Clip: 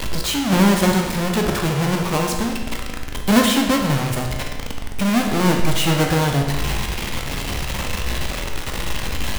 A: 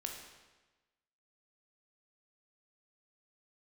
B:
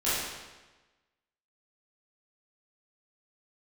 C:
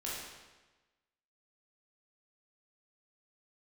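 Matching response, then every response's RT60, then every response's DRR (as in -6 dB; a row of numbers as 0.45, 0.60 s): A; 1.2, 1.2, 1.2 s; 1.5, -12.5, -7.0 dB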